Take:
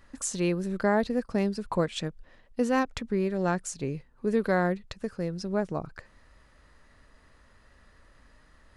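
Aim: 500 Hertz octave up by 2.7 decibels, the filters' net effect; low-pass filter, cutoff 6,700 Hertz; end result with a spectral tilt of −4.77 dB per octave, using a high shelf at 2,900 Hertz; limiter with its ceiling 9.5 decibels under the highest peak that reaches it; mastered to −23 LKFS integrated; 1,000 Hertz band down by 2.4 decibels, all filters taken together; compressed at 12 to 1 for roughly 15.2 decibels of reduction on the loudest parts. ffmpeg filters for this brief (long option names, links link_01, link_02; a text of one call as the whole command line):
ffmpeg -i in.wav -af "lowpass=6700,equalizer=frequency=500:width_type=o:gain=4.5,equalizer=frequency=1000:width_type=o:gain=-6,highshelf=frequency=2900:gain=6,acompressor=threshold=-34dB:ratio=12,volume=18.5dB,alimiter=limit=-12dB:level=0:latency=1" out.wav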